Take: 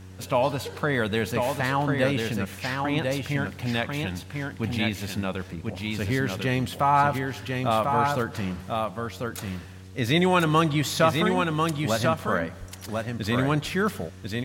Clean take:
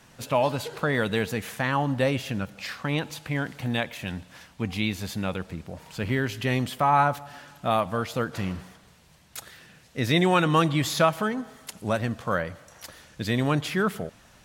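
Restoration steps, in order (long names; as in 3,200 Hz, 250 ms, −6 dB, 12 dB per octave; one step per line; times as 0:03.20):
hum removal 93.6 Hz, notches 5
0:12.59–0:12.71: high-pass filter 140 Hz 24 dB per octave
echo removal 1,044 ms −4 dB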